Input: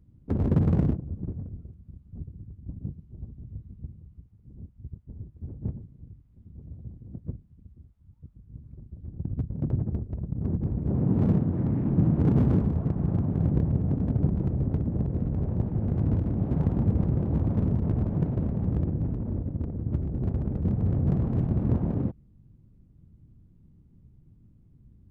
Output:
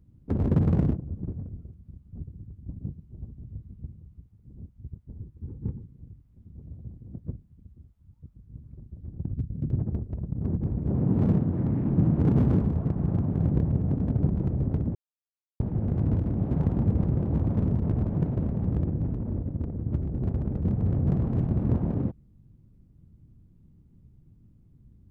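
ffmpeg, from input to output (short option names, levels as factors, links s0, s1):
-filter_complex "[0:a]asettb=1/sr,asplit=3[s0][s1][s2];[s0]atrim=end=5.194[s3];[s1]atrim=start=5.19:end=5.97,asetpts=PTS-STARTPTS,afade=t=in:d=0.004:c=qsin,afade=t=out:st=0.776:d=0.004:c=qsin,asuperstop=centerf=650:order=20:qfactor=2.7[s4];[s2]atrim=start=5.966[s5];[s3][s4]acrossfade=d=0.004:c1=hsin:c2=qsin[s6];[s6][s5]acrossfade=d=0.004:c1=qsin:c2=hsin,asplit=3[s7][s8][s9];[s7]afade=t=out:st=9.32:d=0.02[s10];[s8]equalizer=f=870:w=0.78:g=-14.5,afade=t=in:st=9.32:d=0.02,afade=t=out:st=9.72:d=0.02[s11];[s9]afade=t=in:st=9.72:d=0.02[s12];[s10][s11][s12]amix=inputs=3:normalize=0,asplit=3[s13][s14][s15];[s13]atrim=end=14.95,asetpts=PTS-STARTPTS,afade=t=out:st=14.946:d=0.004:c=hsin[s16];[s14]atrim=start=14.95:end=15.6,asetpts=PTS-STARTPTS,volume=0[s17];[s15]atrim=start=15.6,asetpts=PTS-STARTPTS,afade=t=in:d=0.004:c=hsin[s18];[s16][s17][s18]concat=n=3:v=0:a=1"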